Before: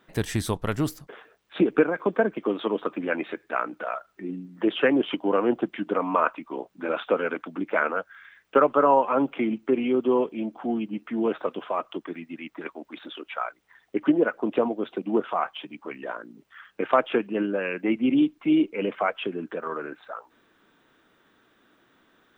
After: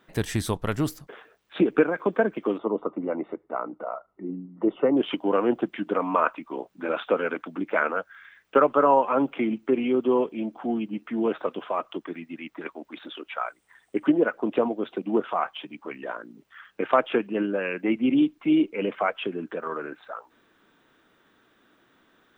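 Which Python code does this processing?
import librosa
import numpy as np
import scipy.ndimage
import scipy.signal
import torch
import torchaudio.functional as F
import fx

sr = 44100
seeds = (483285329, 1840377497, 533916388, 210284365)

y = fx.savgol(x, sr, points=65, at=(2.58, 4.97))
y = fx.peak_eq(y, sr, hz=8500.0, db=14.0, octaves=0.4, at=(13.46, 14.07))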